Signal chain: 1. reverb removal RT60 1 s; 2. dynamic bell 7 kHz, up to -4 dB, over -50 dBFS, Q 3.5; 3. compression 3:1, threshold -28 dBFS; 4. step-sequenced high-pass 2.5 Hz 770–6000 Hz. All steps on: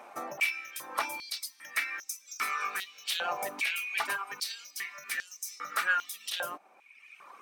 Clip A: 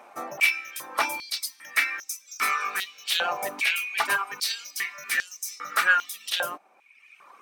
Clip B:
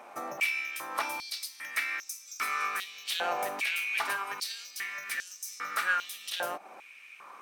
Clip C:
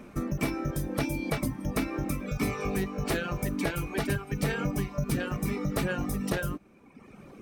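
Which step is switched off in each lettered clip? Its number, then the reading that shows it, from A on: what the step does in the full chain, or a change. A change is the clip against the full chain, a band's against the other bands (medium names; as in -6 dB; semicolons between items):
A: 3, mean gain reduction 5.0 dB; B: 1, 500 Hz band +2.0 dB; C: 4, 250 Hz band +28.5 dB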